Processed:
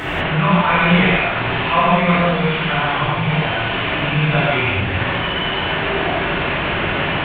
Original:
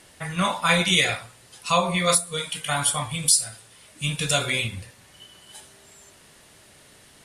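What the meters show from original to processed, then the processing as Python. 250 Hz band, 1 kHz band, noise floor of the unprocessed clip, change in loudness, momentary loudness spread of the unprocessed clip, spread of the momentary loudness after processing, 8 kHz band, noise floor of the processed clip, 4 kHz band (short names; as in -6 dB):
+12.5 dB, +10.5 dB, -53 dBFS, +5.5 dB, 13 LU, 6 LU, under -35 dB, -21 dBFS, +3.5 dB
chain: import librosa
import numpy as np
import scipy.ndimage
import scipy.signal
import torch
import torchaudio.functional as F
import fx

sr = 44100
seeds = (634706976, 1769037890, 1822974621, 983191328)

y = fx.delta_mod(x, sr, bps=16000, step_db=-20.0)
y = fx.rev_gated(y, sr, seeds[0], gate_ms=220, shape='flat', drr_db=-7.5)
y = y * librosa.db_to_amplitude(-1.0)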